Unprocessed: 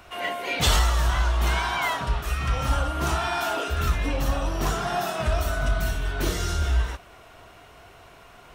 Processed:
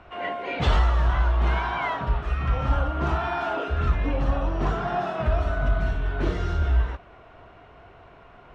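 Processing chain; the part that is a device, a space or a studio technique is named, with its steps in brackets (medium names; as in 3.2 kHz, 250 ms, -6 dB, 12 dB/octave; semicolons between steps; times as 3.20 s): phone in a pocket (low-pass 3.3 kHz 12 dB/octave; treble shelf 2.2 kHz -10 dB); trim +1.5 dB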